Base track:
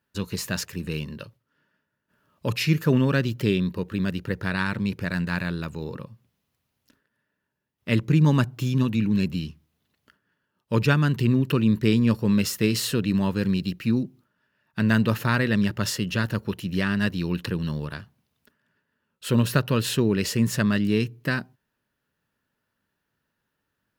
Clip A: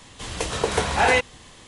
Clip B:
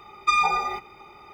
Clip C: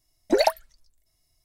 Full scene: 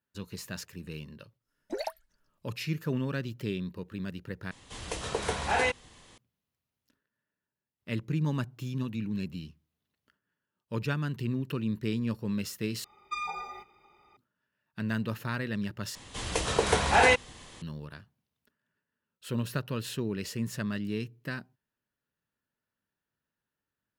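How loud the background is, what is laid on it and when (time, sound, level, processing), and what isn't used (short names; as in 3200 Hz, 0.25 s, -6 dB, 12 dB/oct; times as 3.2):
base track -11 dB
1.4 add C -15 dB, fades 0.10 s
4.51 replace with A -8.5 dB
12.84 replace with B -14.5 dB
15.95 replace with A -2.5 dB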